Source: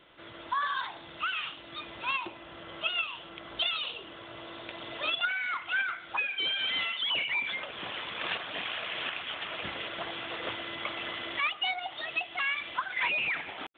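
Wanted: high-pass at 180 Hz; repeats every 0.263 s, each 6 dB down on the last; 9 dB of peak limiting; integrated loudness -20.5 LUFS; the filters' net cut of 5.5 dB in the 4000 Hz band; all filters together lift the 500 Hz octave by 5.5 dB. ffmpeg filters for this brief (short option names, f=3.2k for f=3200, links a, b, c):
-af "highpass=180,equalizer=f=500:t=o:g=7.5,equalizer=f=4k:t=o:g=-8.5,alimiter=level_in=2dB:limit=-24dB:level=0:latency=1,volume=-2dB,aecho=1:1:263|526|789|1052|1315|1578:0.501|0.251|0.125|0.0626|0.0313|0.0157,volume=14dB"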